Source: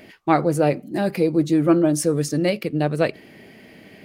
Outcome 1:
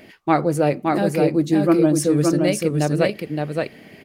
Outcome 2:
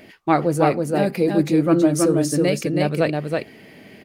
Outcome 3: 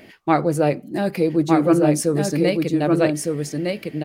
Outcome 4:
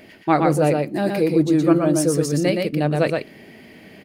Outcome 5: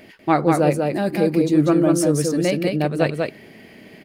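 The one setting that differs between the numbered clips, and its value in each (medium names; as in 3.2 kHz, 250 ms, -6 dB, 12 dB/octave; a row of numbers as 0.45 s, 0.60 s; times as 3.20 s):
delay, time: 569 ms, 324 ms, 1208 ms, 120 ms, 192 ms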